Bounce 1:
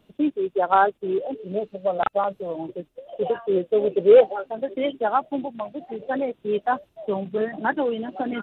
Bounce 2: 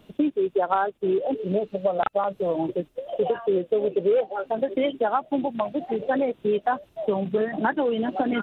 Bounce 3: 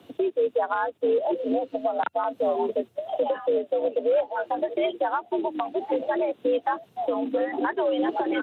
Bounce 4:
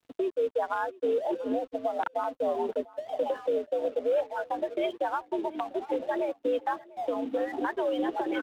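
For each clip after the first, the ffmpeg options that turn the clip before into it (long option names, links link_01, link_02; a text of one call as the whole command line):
ffmpeg -i in.wav -af "acompressor=threshold=-27dB:ratio=6,volume=7dB" out.wav
ffmpeg -i in.wav -af "afreqshift=80,alimiter=limit=-17.5dB:level=0:latency=1:release=286,volume=2dB" out.wav
ffmpeg -i in.wav -af "aeval=exprs='sgn(val(0))*max(abs(val(0))-0.00376,0)':channel_layout=same,aecho=1:1:695:0.0794,volume=-4dB" out.wav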